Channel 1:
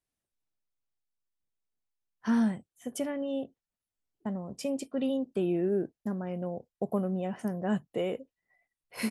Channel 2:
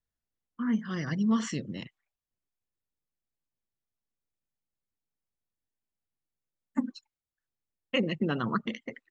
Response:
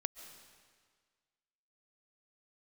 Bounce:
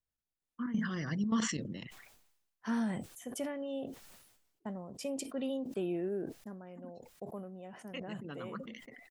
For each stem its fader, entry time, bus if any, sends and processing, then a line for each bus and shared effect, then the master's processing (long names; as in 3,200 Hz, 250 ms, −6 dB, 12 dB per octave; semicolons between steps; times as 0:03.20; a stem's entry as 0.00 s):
−3.5 dB, 0.40 s, no send, low-shelf EQ 300 Hz −6.5 dB; automatic ducking −9 dB, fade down 0.80 s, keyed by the second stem
0:01.90 −4.5 dB → 0:02.26 −15 dB, 0.00 s, no send, gate pattern "xx.x.x.x.xxxx" 182 BPM −12 dB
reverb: not used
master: level that may fall only so fast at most 56 dB per second